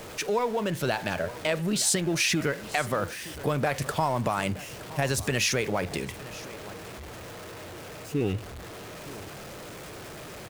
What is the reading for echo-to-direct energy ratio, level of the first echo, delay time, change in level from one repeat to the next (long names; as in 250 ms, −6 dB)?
−17.5 dB, −17.5 dB, 920 ms, repeats not evenly spaced